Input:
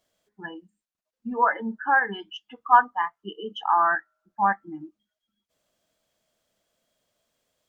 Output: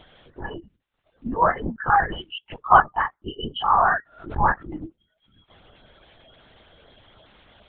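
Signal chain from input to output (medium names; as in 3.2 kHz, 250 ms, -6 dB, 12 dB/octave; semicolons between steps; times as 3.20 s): coarse spectral quantiser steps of 30 dB; in parallel at -1 dB: upward compressor, threshold -26 dBFS; on the sum: LPC vocoder at 8 kHz whisper; 3.55–4.82 s: swell ahead of each attack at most 120 dB/s; trim -2.5 dB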